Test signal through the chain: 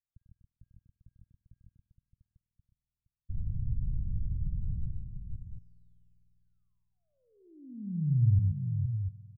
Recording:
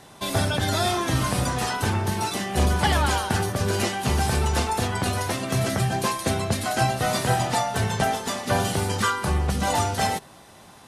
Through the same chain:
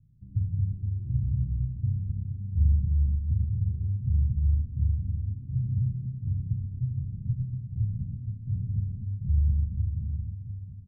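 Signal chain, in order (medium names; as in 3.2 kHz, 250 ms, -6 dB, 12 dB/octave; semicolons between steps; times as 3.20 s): inverse Chebyshev low-pass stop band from 760 Hz, stop band 80 dB; on a send: multi-tap echo 96/127/468/695 ms -8.5/-6.5/-8.5/-8 dB; on the sum: spring tank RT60 3.4 s, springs 50 ms, DRR 17.5 dB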